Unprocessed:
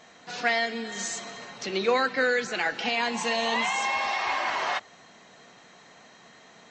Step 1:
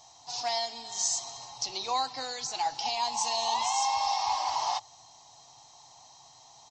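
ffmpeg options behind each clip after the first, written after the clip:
-af "firequalizer=gain_entry='entry(130,0);entry(190,-25);entry(280,-14);entry(480,-20);entry(840,5);entry(1500,-23);entry(3200,-6);entry(5200,8);entry(7400,2)':delay=0.05:min_phase=1,volume=1.12"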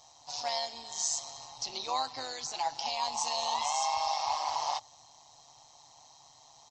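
-af "tremolo=f=150:d=0.621"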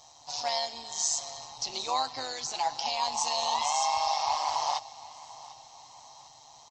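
-af "aecho=1:1:748|1496|2244|2992:0.106|0.0498|0.0234|0.011,volume=1.41"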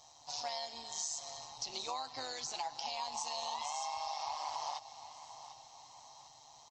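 -af "acompressor=threshold=0.0282:ratio=6,volume=0.562"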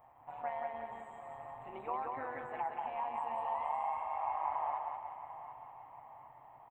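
-af "asuperstop=centerf=5300:order=8:qfactor=0.57,aecho=1:1:181|362|543|724|905|1086:0.668|0.307|0.141|0.0651|0.0299|0.0138,volume=1.33"

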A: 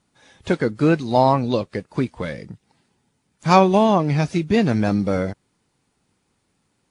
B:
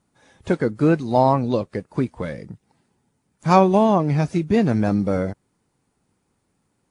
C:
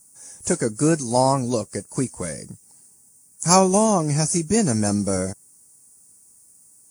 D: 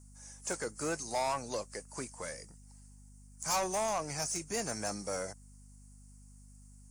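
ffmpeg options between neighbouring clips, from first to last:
-af "equalizer=f=3600:t=o:w=2:g=-7"
-af "aexciter=amount=14.1:drive=9.6:freq=5800,volume=0.794"
-filter_complex "[0:a]acrossover=split=540 7600:gain=0.141 1 0.141[s0][s1][s2];[s0][s1][s2]amix=inputs=3:normalize=0,asoftclip=type=tanh:threshold=0.0841,aeval=exprs='val(0)+0.00355*(sin(2*PI*50*n/s)+sin(2*PI*2*50*n/s)/2+sin(2*PI*3*50*n/s)/3+sin(2*PI*4*50*n/s)/4+sin(2*PI*5*50*n/s)/5)':c=same,volume=0.531"

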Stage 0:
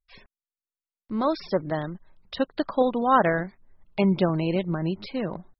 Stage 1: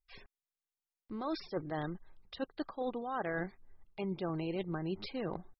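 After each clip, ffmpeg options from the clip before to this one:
-af "aecho=1:1:2.5:0.31,areverse,acompressor=threshold=0.0355:ratio=12,areverse,volume=0.631"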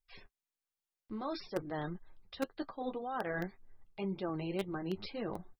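-filter_complex "[0:a]flanger=delay=8.9:depth=2.3:regen=-34:speed=1.9:shape=sinusoidal,asplit=2[s0][s1];[s1]acrusher=bits=4:mix=0:aa=0.000001,volume=0.335[s2];[s0][s2]amix=inputs=2:normalize=0,volume=1.41"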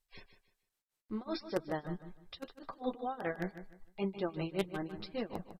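-filter_complex "[0:a]tremolo=f=5.2:d=0.95,asplit=2[s0][s1];[s1]aecho=0:1:152|304|456:0.266|0.0745|0.0209[s2];[s0][s2]amix=inputs=2:normalize=0,volume=1.58" -ar 32000 -c:a sbc -b:a 192k

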